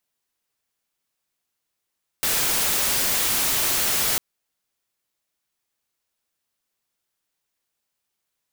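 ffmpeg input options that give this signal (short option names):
-f lavfi -i "anoisesrc=c=white:a=0.138:d=1.95:r=44100:seed=1"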